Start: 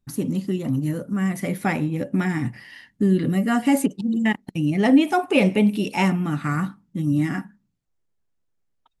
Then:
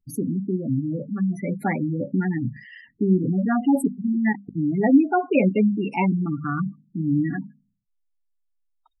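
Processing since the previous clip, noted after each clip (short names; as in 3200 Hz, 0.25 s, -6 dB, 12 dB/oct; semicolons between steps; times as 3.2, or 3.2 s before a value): notches 50/100/150/200/250 Hz; spectral gate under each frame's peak -15 dB strong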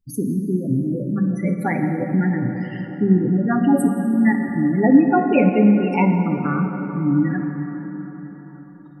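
plate-style reverb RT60 5 s, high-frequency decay 0.4×, DRR 4 dB; gain +2.5 dB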